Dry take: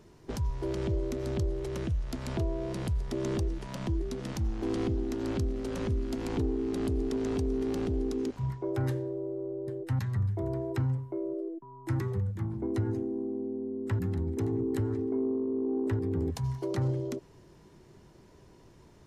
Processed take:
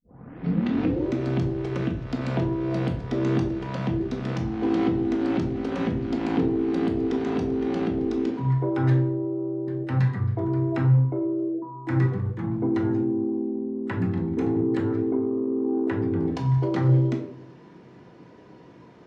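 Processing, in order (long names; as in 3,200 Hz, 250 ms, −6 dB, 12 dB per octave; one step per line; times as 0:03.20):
turntable start at the beginning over 1.07 s
band-pass filter 170–3,000 Hz
rectangular room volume 560 cubic metres, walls furnished, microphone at 1.9 metres
level +7 dB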